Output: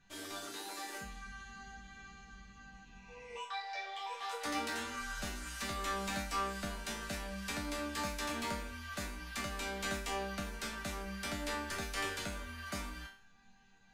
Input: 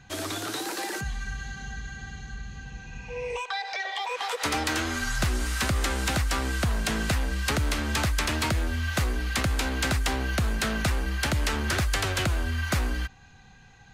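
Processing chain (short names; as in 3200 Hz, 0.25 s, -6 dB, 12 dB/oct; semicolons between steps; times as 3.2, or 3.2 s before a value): resonator bank G3 minor, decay 0.43 s; gain +6.5 dB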